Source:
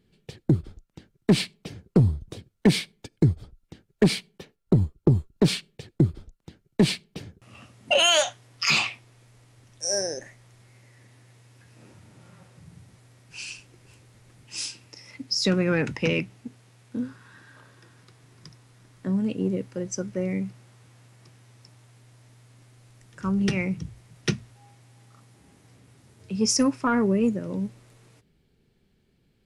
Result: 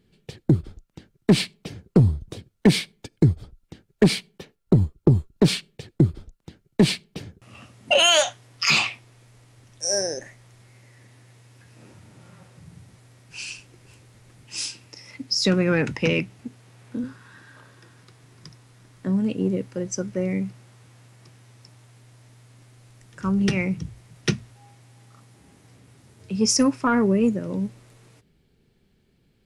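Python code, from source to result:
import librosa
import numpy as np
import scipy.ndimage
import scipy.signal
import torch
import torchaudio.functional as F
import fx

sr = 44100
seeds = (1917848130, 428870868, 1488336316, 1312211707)

y = fx.band_squash(x, sr, depth_pct=40, at=(16.39, 17.04))
y = y * 10.0 ** (2.5 / 20.0)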